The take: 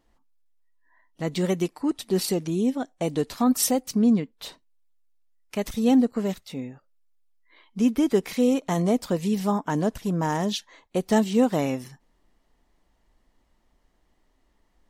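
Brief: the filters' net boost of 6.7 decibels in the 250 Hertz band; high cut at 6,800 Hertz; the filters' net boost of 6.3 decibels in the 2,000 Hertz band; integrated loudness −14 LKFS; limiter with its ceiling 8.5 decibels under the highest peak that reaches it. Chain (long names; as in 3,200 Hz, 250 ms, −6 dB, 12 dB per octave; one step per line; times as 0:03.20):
low-pass filter 6,800 Hz
parametric band 250 Hz +7.5 dB
parametric band 2,000 Hz +7.5 dB
level +9 dB
brickwall limiter −3.5 dBFS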